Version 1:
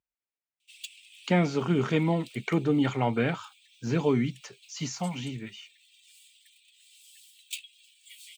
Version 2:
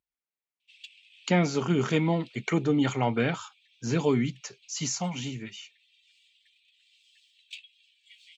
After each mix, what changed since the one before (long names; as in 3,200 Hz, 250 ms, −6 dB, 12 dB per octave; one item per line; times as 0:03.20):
speech: remove high-frequency loss of the air 110 metres
background: add high-frequency loss of the air 180 metres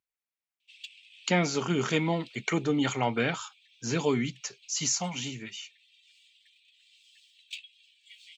master: add spectral tilt +1.5 dB per octave